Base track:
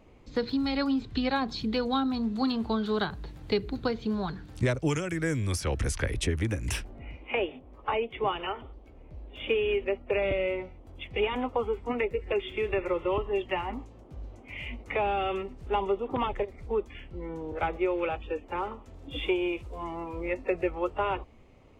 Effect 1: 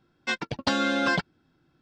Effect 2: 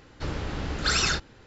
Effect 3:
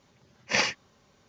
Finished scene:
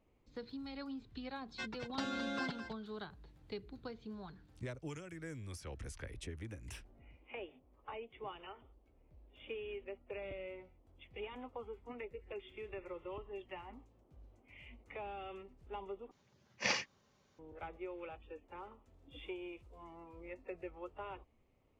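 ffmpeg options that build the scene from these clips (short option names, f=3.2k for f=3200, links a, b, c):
-filter_complex "[0:a]volume=-17.5dB[a];[1:a]aecho=1:1:213:0.316[b];[a]asplit=2[c][d];[c]atrim=end=16.114[e];[3:a]atrim=end=1.28,asetpts=PTS-STARTPTS,volume=-9.5dB[f];[d]atrim=start=17.386[g];[b]atrim=end=1.81,asetpts=PTS-STARTPTS,volume=-15.5dB,afade=t=in:d=0.004:c=hsin,afade=t=out:st=1.806:d=0.004:c=hsin,adelay=1310[h];[e][f]acrossfade=d=0.004:c1=hsin:c2=hsin[i];[i][g]acrossfade=d=0.004:c1=hsin:c2=hsin[j];[j][h]amix=inputs=2:normalize=0"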